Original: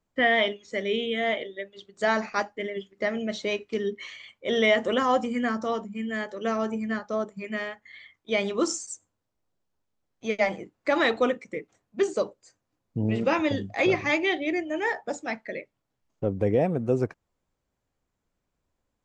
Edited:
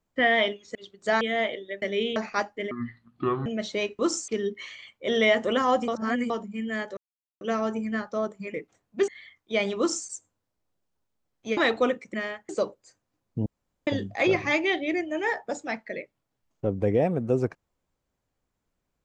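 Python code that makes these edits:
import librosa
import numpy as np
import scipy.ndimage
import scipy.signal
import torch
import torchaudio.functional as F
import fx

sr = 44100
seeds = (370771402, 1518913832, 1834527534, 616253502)

y = fx.edit(x, sr, fx.swap(start_s=0.75, length_s=0.34, other_s=1.7, other_length_s=0.46),
    fx.speed_span(start_s=2.71, length_s=0.45, speed=0.6),
    fx.reverse_span(start_s=5.29, length_s=0.42),
    fx.insert_silence(at_s=6.38, length_s=0.44),
    fx.swap(start_s=7.51, length_s=0.35, other_s=11.54, other_length_s=0.54),
    fx.duplicate(start_s=8.56, length_s=0.29, to_s=3.69),
    fx.cut(start_s=10.35, length_s=0.62),
    fx.room_tone_fill(start_s=13.05, length_s=0.41), tone=tone)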